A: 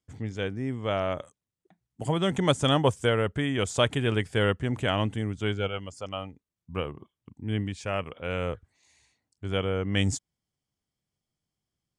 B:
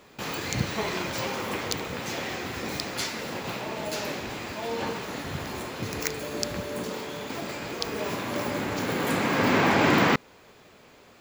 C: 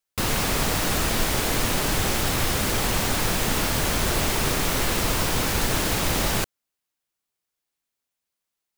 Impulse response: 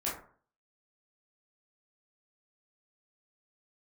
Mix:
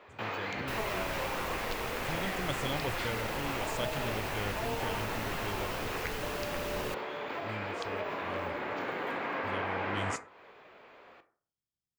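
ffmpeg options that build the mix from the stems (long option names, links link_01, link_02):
-filter_complex "[0:a]bass=frequency=250:gain=2,treble=frequency=4000:gain=10,volume=-15.5dB,asplit=2[link_01][link_02];[link_02]volume=-18.5dB[link_03];[1:a]acrossover=split=400 3200:gain=0.2 1 0.1[link_04][link_05][link_06];[link_04][link_05][link_06]amix=inputs=3:normalize=0,acompressor=threshold=-34dB:ratio=6,volume=-0.5dB,asplit=2[link_07][link_08];[link_08]volume=-11.5dB[link_09];[2:a]equalizer=frequency=2700:width=5.8:gain=6.5,adelay=500,volume=-16dB[link_10];[3:a]atrim=start_sample=2205[link_11];[link_03][link_09]amix=inputs=2:normalize=0[link_12];[link_12][link_11]afir=irnorm=-1:irlink=0[link_13];[link_01][link_07][link_10][link_13]amix=inputs=4:normalize=0,equalizer=frequency=9000:width=0.85:gain=-5.5"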